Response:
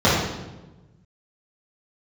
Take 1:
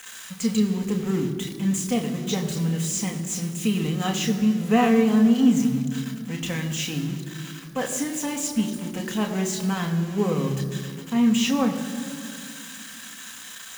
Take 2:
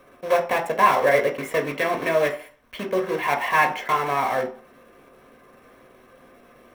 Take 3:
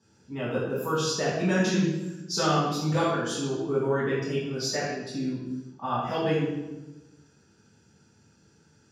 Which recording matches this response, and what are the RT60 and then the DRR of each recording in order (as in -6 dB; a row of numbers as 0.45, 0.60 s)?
3; 2.3, 0.45, 1.1 s; 2.0, 3.5, -10.5 dB